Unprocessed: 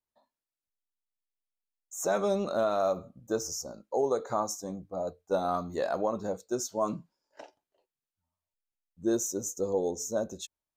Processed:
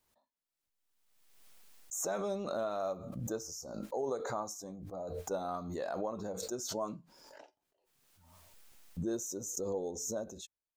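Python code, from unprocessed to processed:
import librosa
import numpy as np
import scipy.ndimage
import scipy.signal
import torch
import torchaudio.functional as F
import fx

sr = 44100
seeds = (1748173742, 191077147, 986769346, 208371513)

y = fx.pre_swell(x, sr, db_per_s=37.0)
y = y * 10.0 ** (-8.5 / 20.0)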